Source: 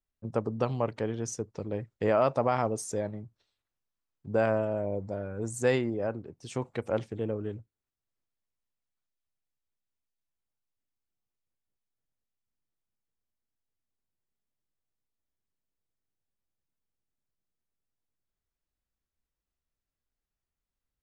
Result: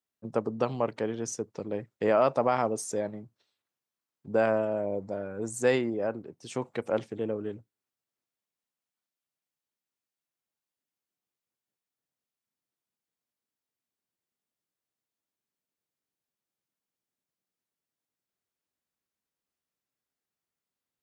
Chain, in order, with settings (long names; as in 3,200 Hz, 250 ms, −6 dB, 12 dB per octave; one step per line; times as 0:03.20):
high-pass filter 170 Hz 12 dB per octave
level +1.5 dB